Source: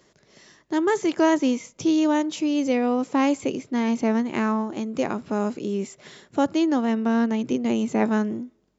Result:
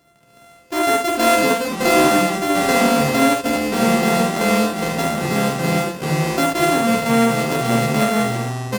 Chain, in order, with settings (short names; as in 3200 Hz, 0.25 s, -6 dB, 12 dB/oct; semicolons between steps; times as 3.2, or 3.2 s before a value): sample sorter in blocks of 64 samples; echoes that change speed 0.211 s, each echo -5 st, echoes 2; early reflections 14 ms -7.5 dB, 48 ms -4 dB, 74 ms -4.5 dB